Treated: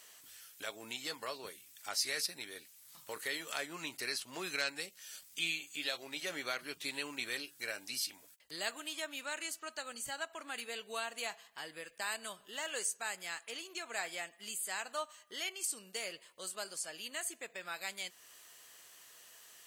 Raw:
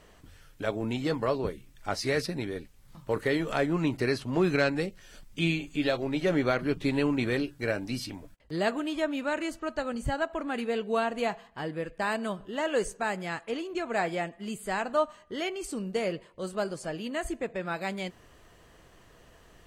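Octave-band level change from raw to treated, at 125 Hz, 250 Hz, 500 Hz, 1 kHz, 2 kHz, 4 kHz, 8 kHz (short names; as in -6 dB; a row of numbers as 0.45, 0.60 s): -27.5, -22.0, -17.0, -11.5, -6.0, 0.0, +6.0 dB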